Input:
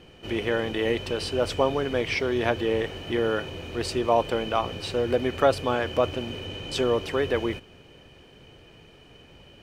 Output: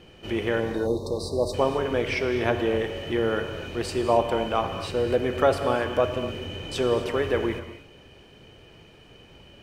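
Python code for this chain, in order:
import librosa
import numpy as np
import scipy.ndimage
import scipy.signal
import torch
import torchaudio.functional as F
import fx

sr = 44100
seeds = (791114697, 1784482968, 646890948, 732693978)

y = fx.spec_erase(x, sr, start_s=0.6, length_s=0.94, low_hz=1200.0, high_hz=3600.0)
y = fx.dynamic_eq(y, sr, hz=4300.0, q=1.1, threshold_db=-43.0, ratio=4.0, max_db=-4)
y = fx.rev_gated(y, sr, seeds[0], gate_ms=290, shape='flat', drr_db=7.0)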